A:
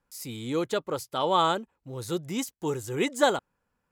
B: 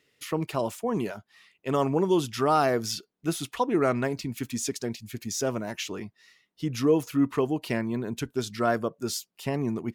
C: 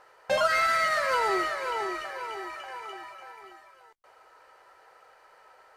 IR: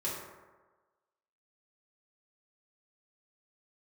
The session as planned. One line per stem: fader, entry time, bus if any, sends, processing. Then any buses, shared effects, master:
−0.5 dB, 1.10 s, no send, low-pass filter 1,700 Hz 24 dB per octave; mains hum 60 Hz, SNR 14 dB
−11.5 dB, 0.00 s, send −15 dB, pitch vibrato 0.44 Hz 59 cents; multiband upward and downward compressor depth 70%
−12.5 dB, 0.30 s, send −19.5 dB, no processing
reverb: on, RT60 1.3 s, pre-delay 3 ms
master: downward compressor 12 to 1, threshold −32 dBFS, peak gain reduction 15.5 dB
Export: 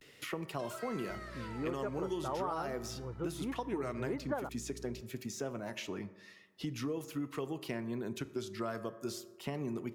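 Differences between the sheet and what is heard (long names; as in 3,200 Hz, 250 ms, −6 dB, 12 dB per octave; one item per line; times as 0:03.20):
stem A −0.5 dB → −7.0 dB
stem C −12.5 dB → −23.5 dB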